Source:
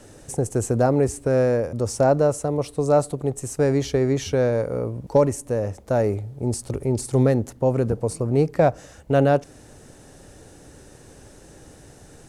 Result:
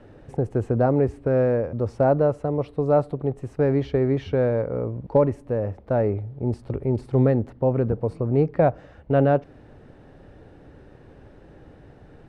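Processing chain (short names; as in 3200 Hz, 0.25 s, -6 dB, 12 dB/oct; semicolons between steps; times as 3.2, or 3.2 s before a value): air absorption 410 m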